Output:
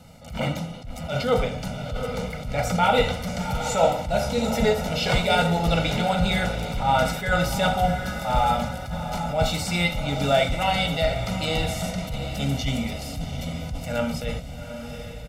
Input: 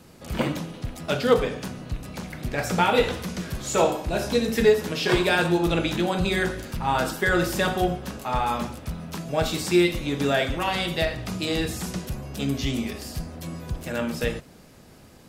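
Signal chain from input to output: high shelf 7000 Hz -5.5 dB; notch 1600 Hz, Q 6.1; comb 1.4 ms, depth 94%; diffused feedback echo 0.778 s, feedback 49%, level -10 dB; attack slew limiter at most 110 dB/s

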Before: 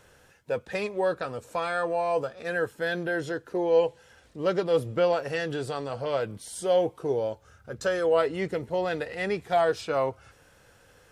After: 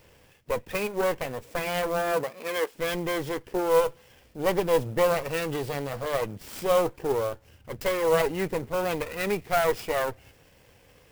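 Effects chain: minimum comb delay 0.39 ms; 2.11–2.74 HPF 95 Hz -> 400 Hz 24 dB/oct; clock jitter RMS 0.028 ms; gain +2 dB

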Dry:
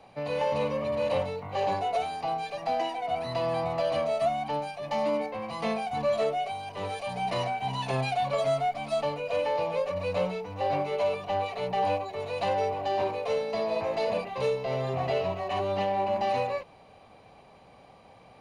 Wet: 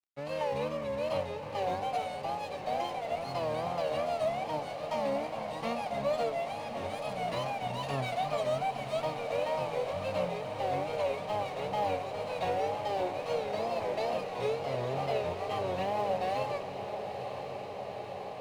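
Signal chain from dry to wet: wow and flutter 120 cents; crossover distortion -45 dBFS; on a send: diffused feedback echo 0.97 s, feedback 79%, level -9 dB; on the sum: gain -4 dB

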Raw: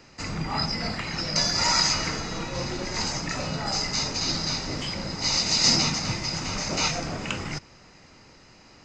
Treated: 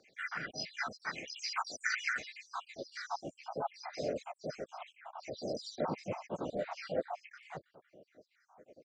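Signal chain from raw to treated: random spectral dropouts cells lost 81%; harmoniser -3 st -15 dB, +3 st -7 dB; band-pass sweep 1500 Hz -> 560 Hz, 2.44–3.56; gain +6.5 dB

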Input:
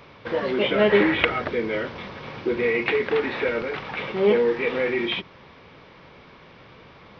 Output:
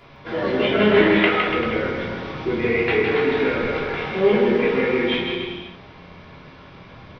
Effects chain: 1.02–1.47 HPF 470 Hz; bouncing-ball echo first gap 0.16 s, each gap 0.8×, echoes 5; shoebox room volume 370 m³, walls furnished, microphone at 3.1 m; gain -3.5 dB

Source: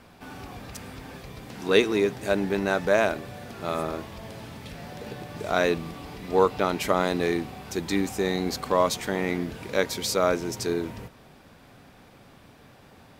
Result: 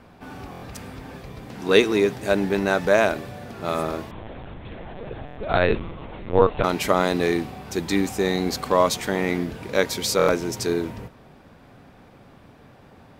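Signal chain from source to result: 4.11–6.64 LPC vocoder at 8 kHz pitch kept; stuck buffer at 0.51/5.26/10.17, samples 1024, times 4; mismatched tape noise reduction decoder only; gain +3.5 dB

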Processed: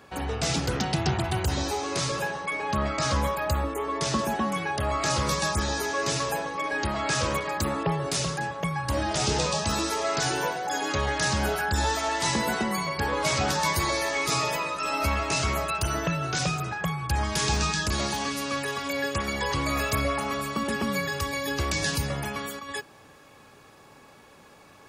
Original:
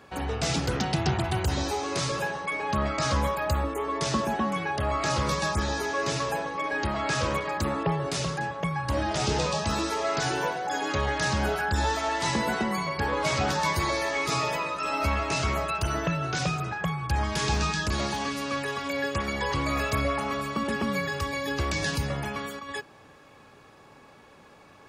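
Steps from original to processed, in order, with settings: high shelf 6700 Hz +4.5 dB, from 4.19 s +10.5 dB

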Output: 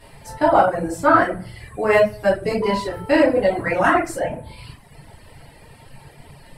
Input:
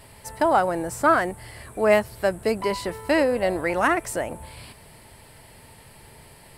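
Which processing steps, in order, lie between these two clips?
high shelf 8700 Hz -10 dB; shoebox room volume 110 m³, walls mixed, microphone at 1.8 m; reverb removal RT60 0.96 s; gain -2.5 dB

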